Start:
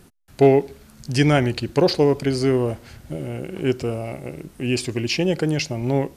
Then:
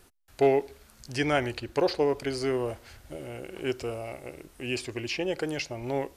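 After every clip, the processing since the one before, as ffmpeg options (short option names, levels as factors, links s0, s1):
-filter_complex "[0:a]equalizer=f=170:t=o:w=1.5:g=-14,acrossover=split=2700[s0][s1];[s1]alimiter=limit=0.0708:level=0:latency=1:release=403[s2];[s0][s2]amix=inputs=2:normalize=0,volume=0.631"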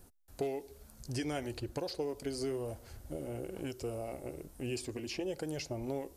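-filter_complex "[0:a]equalizer=f=2400:t=o:w=2.6:g=-13,acrossover=split=2400[s0][s1];[s0]acompressor=threshold=0.0158:ratio=6[s2];[s2][s1]amix=inputs=2:normalize=0,flanger=delay=1.2:depth=3:regen=-65:speed=1.1:shape=sinusoidal,volume=2"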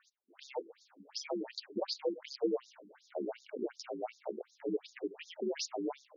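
-af "acrusher=bits=6:mode=log:mix=0:aa=0.000001,afreqshift=63,afftfilt=real='re*between(b*sr/1024,270*pow(5100/270,0.5+0.5*sin(2*PI*2.7*pts/sr))/1.41,270*pow(5100/270,0.5+0.5*sin(2*PI*2.7*pts/sr))*1.41)':imag='im*between(b*sr/1024,270*pow(5100/270,0.5+0.5*sin(2*PI*2.7*pts/sr))/1.41,270*pow(5100/270,0.5+0.5*sin(2*PI*2.7*pts/sr))*1.41)':win_size=1024:overlap=0.75,volume=2.24"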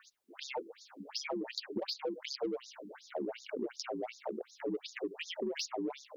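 -filter_complex "[0:a]asplit=2[s0][s1];[s1]asoftclip=type=tanh:threshold=0.0211,volume=0.473[s2];[s0][s2]amix=inputs=2:normalize=0,acrossover=split=240|2500[s3][s4][s5];[s3]acompressor=threshold=0.00398:ratio=4[s6];[s4]acompressor=threshold=0.00631:ratio=4[s7];[s5]acompressor=threshold=0.00631:ratio=4[s8];[s6][s7][s8]amix=inputs=3:normalize=0,volume=1.88"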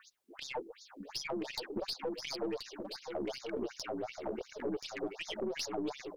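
-af "aeval=exprs='(tanh(31.6*val(0)+0.3)-tanh(0.3))/31.6':c=same,aecho=1:1:1029:0.447,volume=1.19"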